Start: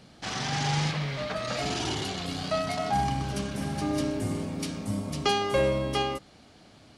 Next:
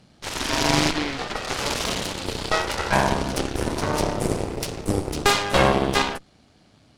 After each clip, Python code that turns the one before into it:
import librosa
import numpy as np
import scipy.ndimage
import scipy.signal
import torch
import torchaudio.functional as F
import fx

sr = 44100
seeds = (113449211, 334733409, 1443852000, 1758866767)

y = fx.bass_treble(x, sr, bass_db=4, treble_db=1)
y = fx.cheby_harmonics(y, sr, harmonics=(4, 7, 8), levels_db=(-11, -14, -17), full_scale_db=-10.5)
y = F.gain(torch.from_numpy(y), 4.0).numpy()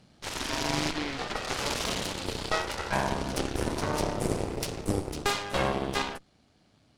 y = fx.rider(x, sr, range_db=3, speed_s=0.5)
y = F.gain(torch.from_numpy(y), -7.0).numpy()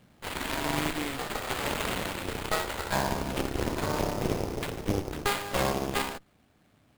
y = fx.sample_hold(x, sr, seeds[0], rate_hz=5800.0, jitter_pct=20)